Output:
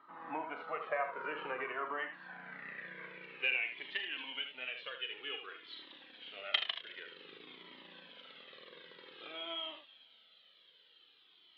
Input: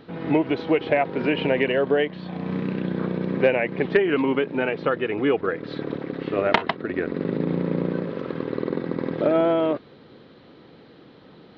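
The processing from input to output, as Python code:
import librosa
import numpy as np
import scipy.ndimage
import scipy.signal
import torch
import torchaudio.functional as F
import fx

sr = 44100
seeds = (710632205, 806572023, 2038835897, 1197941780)

y = scipy.signal.sosfilt(scipy.signal.butter(2, 120.0, 'highpass', fs=sr, output='sos'), x)
y = fx.echo_wet_highpass(y, sr, ms=108, feedback_pct=73, hz=1500.0, wet_db=-18.0)
y = fx.filter_sweep_bandpass(y, sr, from_hz=1200.0, to_hz=3200.0, start_s=1.88, end_s=3.78, q=5.3)
y = fx.room_early_taps(y, sr, ms=(39, 78), db=(-10.0, -8.0))
y = fx.comb_cascade(y, sr, direction='falling', hz=0.52)
y = y * 10.0 ** (4.5 / 20.0)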